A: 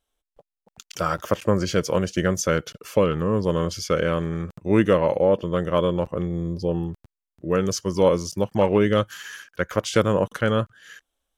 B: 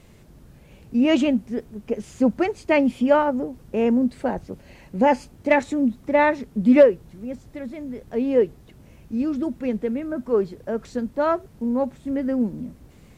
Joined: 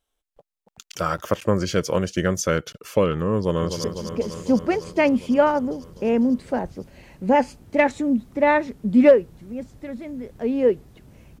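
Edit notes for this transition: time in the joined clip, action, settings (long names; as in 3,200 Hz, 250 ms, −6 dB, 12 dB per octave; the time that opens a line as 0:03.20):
A
0:03.36–0:03.84: delay throw 250 ms, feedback 80%, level −8.5 dB
0:03.84: continue with B from 0:01.56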